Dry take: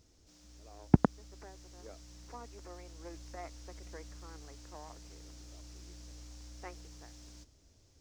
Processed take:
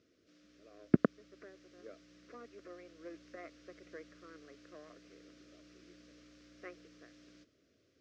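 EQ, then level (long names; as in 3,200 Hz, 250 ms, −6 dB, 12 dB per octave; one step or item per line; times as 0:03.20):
high-pass filter 240 Hz 12 dB per octave
Butterworth band-reject 860 Hz, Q 1.5
low-pass filter 2,700 Hz 12 dB per octave
+1.5 dB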